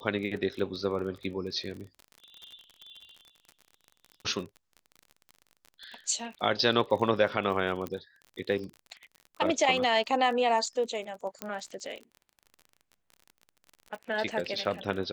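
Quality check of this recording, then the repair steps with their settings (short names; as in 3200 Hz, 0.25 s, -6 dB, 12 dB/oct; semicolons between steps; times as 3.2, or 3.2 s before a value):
crackle 40/s -38 dBFS
7.87 pop -20 dBFS
11.42 pop -17 dBFS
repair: de-click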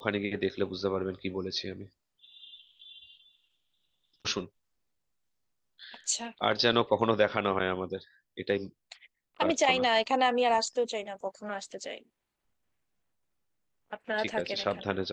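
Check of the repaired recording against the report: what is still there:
none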